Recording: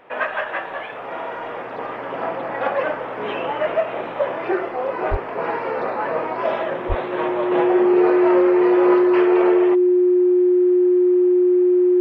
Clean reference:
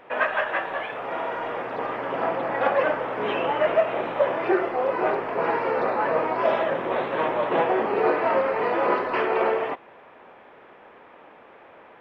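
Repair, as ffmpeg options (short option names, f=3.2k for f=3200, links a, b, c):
-filter_complex "[0:a]bandreject=f=360:w=30,asplit=3[a][b][c];[a]afade=t=out:st=5.1:d=0.02[d];[b]highpass=f=140:w=0.5412,highpass=f=140:w=1.3066,afade=t=in:st=5.1:d=0.02,afade=t=out:st=5.22:d=0.02[e];[c]afade=t=in:st=5.22:d=0.02[f];[d][e][f]amix=inputs=3:normalize=0,asplit=3[g][h][i];[g]afade=t=out:st=6.88:d=0.02[j];[h]highpass=f=140:w=0.5412,highpass=f=140:w=1.3066,afade=t=in:st=6.88:d=0.02,afade=t=out:st=7:d=0.02[k];[i]afade=t=in:st=7:d=0.02[l];[j][k][l]amix=inputs=3:normalize=0"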